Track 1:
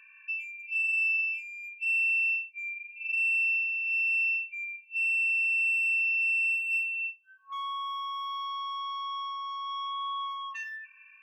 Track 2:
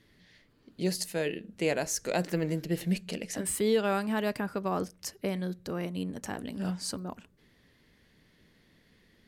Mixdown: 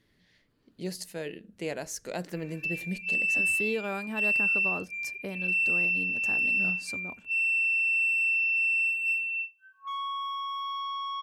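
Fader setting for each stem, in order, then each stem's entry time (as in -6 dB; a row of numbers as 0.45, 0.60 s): +1.0, -5.5 dB; 2.35, 0.00 s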